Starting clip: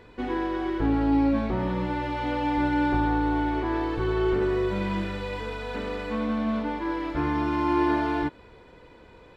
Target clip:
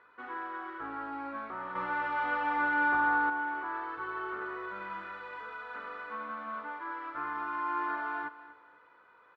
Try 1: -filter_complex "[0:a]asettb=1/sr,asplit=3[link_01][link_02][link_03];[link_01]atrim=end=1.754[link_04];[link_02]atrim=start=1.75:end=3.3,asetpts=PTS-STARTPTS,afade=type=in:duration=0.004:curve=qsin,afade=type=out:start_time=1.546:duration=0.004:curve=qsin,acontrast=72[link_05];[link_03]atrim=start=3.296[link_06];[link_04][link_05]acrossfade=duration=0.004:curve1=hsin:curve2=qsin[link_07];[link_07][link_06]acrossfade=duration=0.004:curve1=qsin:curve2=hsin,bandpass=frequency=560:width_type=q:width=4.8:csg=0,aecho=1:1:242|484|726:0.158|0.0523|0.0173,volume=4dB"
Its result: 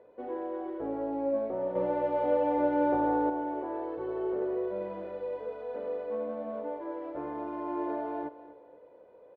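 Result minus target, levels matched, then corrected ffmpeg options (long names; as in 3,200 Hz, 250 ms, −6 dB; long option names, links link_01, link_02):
500 Hz band +14.0 dB
-filter_complex "[0:a]asettb=1/sr,asplit=3[link_01][link_02][link_03];[link_01]atrim=end=1.754[link_04];[link_02]atrim=start=1.75:end=3.3,asetpts=PTS-STARTPTS,afade=type=in:duration=0.004:curve=qsin,afade=type=out:start_time=1.546:duration=0.004:curve=qsin,acontrast=72[link_05];[link_03]atrim=start=3.296[link_06];[link_04][link_05]acrossfade=duration=0.004:curve1=hsin:curve2=qsin[link_07];[link_07][link_06]acrossfade=duration=0.004:curve1=qsin:curve2=hsin,bandpass=frequency=1300:width_type=q:width=4.8:csg=0,aecho=1:1:242|484|726:0.158|0.0523|0.0173,volume=4dB"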